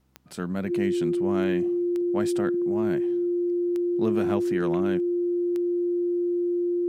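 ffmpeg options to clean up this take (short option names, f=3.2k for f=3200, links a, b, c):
-af "adeclick=t=4,bandreject=f=64.5:t=h:w=4,bandreject=f=129:t=h:w=4,bandreject=f=193.5:t=h:w=4,bandreject=f=258:t=h:w=4,bandreject=f=322.5:t=h:w=4,bandreject=f=350:w=30"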